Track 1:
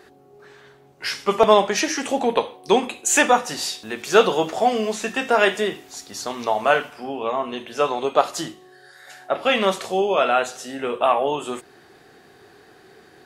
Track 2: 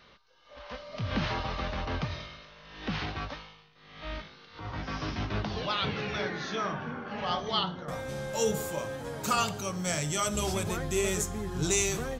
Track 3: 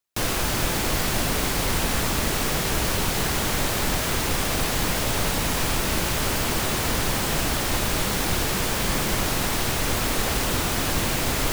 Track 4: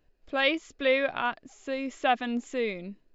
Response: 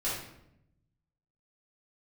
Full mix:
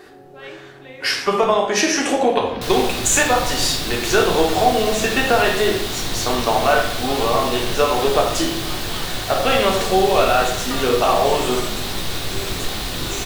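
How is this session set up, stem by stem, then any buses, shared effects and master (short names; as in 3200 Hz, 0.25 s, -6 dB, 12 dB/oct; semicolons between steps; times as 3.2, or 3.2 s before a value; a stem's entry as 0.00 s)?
+1.5 dB, 0.00 s, send -3 dB, compressor 6:1, threshold -20 dBFS, peak gain reduction 11.5 dB
-4.5 dB, 1.40 s, no send, dry
-9.0 dB, 2.45 s, send -5 dB, bell 3800 Hz +10 dB 0.64 oct
-18.5 dB, 0.00 s, send -5.5 dB, dry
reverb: on, RT60 0.80 s, pre-delay 3 ms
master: dry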